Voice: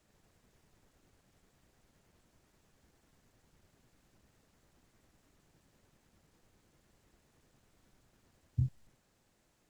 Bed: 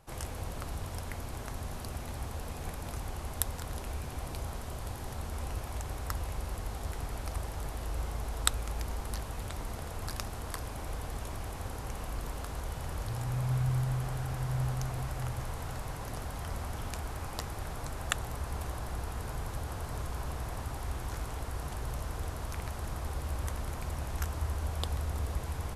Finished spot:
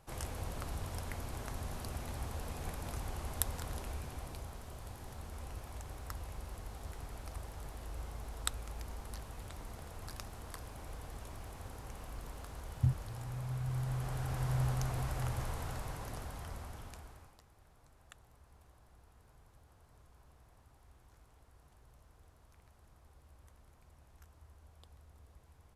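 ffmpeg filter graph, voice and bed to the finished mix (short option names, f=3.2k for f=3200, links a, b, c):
-filter_complex "[0:a]adelay=4250,volume=1.5dB[a];[1:a]volume=5dB,afade=t=out:st=3.64:d=0.86:silence=0.501187,afade=t=in:st=13.6:d=0.88:silence=0.421697,afade=t=out:st=15.42:d=1.96:silence=0.0595662[b];[a][b]amix=inputs=2:normalize=0"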